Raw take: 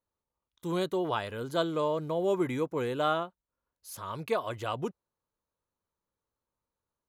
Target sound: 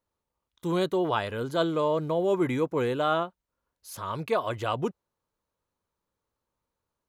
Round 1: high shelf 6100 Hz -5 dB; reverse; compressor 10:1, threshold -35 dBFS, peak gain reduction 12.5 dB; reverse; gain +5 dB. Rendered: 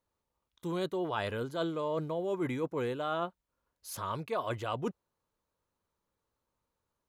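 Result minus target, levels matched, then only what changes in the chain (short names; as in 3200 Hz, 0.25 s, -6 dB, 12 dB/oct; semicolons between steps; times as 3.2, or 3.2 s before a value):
compressor: peak gain reduction +9 dB
change: compressor 10:1, threshold -25 dBFS, peak gain reduction 3.5 dB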